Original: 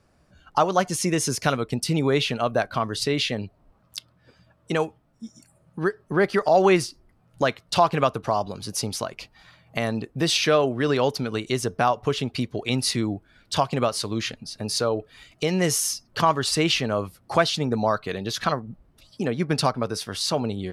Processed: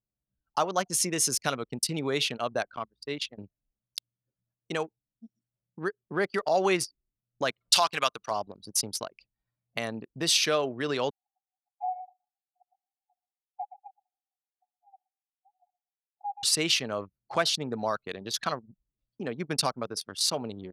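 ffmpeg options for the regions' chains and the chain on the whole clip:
-filter_complex "[0:a]asettb=1/sr,asplit=3[s0][s1][s2];[s0]atrim=end=2.764[s3];[s1]atrim=start=2.76:end=3.38,asetpts=PTS-STARTPTS,afade=t=in:d=0.004:c=qsin,afade=t=out:st=0.616:d=0.004:c=qsin,agate=range=0.0224:threshold=0.1:ratio=3:release=100:detection=peak,highpass=45,aeval=exprs='val(0)+0.002*(sin(2*PI*60*n/s)+sin(2*PI*2*60*n/s)/2+sin(2*PI*3*60*n/s)/3+sin(2*PI*4*60*n/s)/4+sin(2*PI*5*60*n/s)/5)':c=same[s4];[s2]atrim=start=3.376[s5];[s3][s4]acrossfade=d=0.004:c1=hsin:c2=qsin[s6];[s6][s5]acrossfade=d=0.004:c1=qsin:c2=hsin,asettb=1/sr,asplit=3[s7][s8][s9];[s7]atrim=end=7.614[s10];[s8]atrim=start=7.61:end=8.31,asetpts=PTS-STARTPTS,afade=t=in:d=0.004:c=qsin,afade=t=out:st=0.696:d=0.004:c=qsin,tiltshelf=f=880:g=-8.5,acompressor=mode=upward:threshold=0.0316:ratio=2.5:attack=3.2:release=140:knee=2.83:detection=peak[s11];[s9]atrim=start=8.306[s12];[s10][s11]acrossfade=d=0.004:c1=hsin:c2=qsin[s13];[s13][s12]acrossfade=d=0.004:c1=qsin:c2=hsin,asettb=1/sr,asplit=3[s14][s15][s16];[s14]atrim=end=11.104[s17];[s15]atrim=start=11.1:end=16.43,asetpts=PTS-STARTPTS,afade=t=in:d=0.004:c=qsin,afade=t=out:st=5.326:d=0.004:c=qsin,asuperpass=centerf=780:order=12:qfactor=6.5,aecho=1:1:120|240|360:0.316|0.0664|0.0139,atrim=end_sample=235053[s18];[s16]atrim=start=16.426[s19];[s17][s18]acrossfade=d=0.004:c1=hsin:c2=qsin[s20];[s20][s19]acrossfade=d=0.004:c1=qsin:c2=hsin,anlmdn=63.1,highpass=f=200:p=1,highshelf=f=3800:g=11.5,volume=0.447"

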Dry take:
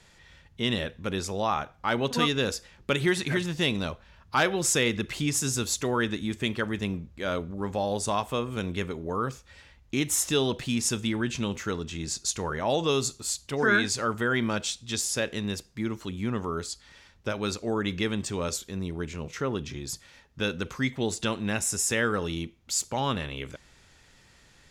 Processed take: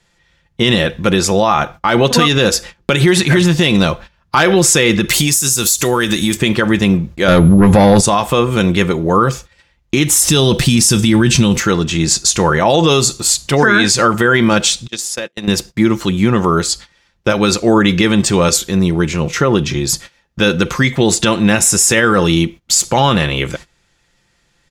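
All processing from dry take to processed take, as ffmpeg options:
-filter_complex "[0:a]asettb=1/sr,asplit=3[s0][s1][s2];[s0]atrim=end=5.094[s3];[s1]atrim=start=5.09:end=6.37,asetpts=PTS-STARTPTS,afade=t=in:d=0.004:c=qsin,afade=t=out:st=1.276:d=0.004:c=qsin,aemphasis=mode=production:type=75fm,acompressor=threshold=0.0398:ratio=16:attack=3.2:release=140:knee=1:detection=peak[s4];[s2]atrim=start=6.366[s5];[s3][s4]acrossfade=d=0.004:c1=hsin:c2=qsin[s6];[s6][s5]acrossfade=d=0.004:c1=qsin:c2=hsin,asettb=1/sr,asplit=3[s7][s8][s9];[s7]atrim=end=7.284[s10];[s8]atrim=start=7.28:end=8.01,asetpts=PTS-STARTPTS,afade=t=in:d=0.004:c=qsin,afade=t=out:st=0.726:d=0.004:c=qsin,bass=f=250:g=8,treble=f=4000:g=-4,aeval=exprs='val(0)+0.00158*sin(2*PI*11000*n/s)':c=same,aeval=exprs='0.188*sin(PI/2*1.78*val(0)/0.188)':c=same[s11];[s9]atrim=start=8.006[s12];[s10][s11]acrossfade=d=0.004:c1=hsin:c2=qsin[s13];[s13][s12]acrossfade=d=0.004:c1=qsin:c2=hsin,asettb=1/sr,asplit=3[s14][s15][s16];[s14]atrim=end=10.164[s17];[s15]atrim=start=10.16:end=11.6,asetpts=PTS-STARTPTS,afade=t=in:d=0.004:c=qsin,afade=t=out:st=1.436:d=0.004:c=qsin,bass=f=250:g=7,treble=f=4000:g=8,bandreject=f=6800:w=9.1[s18];[s16]atrim=start=11.596[s19];[s17][s18]acrossfade=d=0.004:c1=hsin:c2=qsin[s20];[s20][s19]acrossfade=d=0.004:c1=qsin:c2=hsin,asettb=1/sr,asplit=3[s21][s22][s23];[s21]atrim=end=14.874[s24];[s22]atrim=start=14.87:end=15.48,asetpts=PTS-STARTPTS,afade=t=in:d=0.004:c=qsin,afade=t=out:st=0.606:d=0.004:c=qsin,agate=range=0.0355:threshold=0.0282:ratio=16:release=100:detection=peak,highpass=f=210:p=1,acompressor=threshold=0.0126:ratio=6:attack=3.2:release=140:knee=1:detection=peak[s25];[s23]atrim=start=15.476[s26];[s24][s25]acrossfade=d=0.004:c1=hsin:c2=qsin[s27];[s27][s26]acrossfade=d=0.004:c1=qsin:c2=hsin,agate=range=0.0891:threshold=0.00447:ratio=16:detection=peak,aecho=1:1:5.8:0.39,alimiter=level_in=9.44:limit=0.891:release=50:level=0:latency=1,volume=0.891"

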